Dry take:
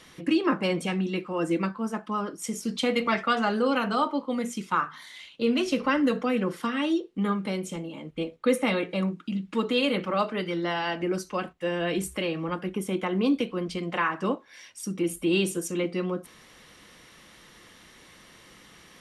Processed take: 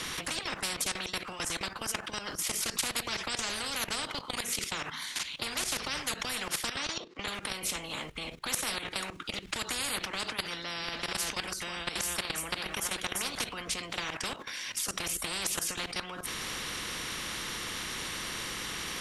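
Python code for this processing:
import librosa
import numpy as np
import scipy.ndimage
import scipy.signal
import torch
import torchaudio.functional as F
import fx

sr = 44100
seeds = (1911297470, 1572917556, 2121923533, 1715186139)

y = fx.cabinet(x, sr, low_hz=140.0, low_slope=24, high_hz=6000.0, hz=(200.0, 1100.0, 3000.0), db=(-3, 5, -7), at=(6.76, 7.28))
y = fx.echo_single(y, sr, ms=344, db=-10.0, at=(10.8, 13.4), fade=0.02)
y = fx.peak_eq(y, sr, hz=570.0, db=-7.5, octaves=1.3)
y = fx.level_steps(y, sr, step_db=15)
y = fx.spectral_comp(y, sr, ratio=10.0)
y = y * 10.0 ** (3.5 / 20.0)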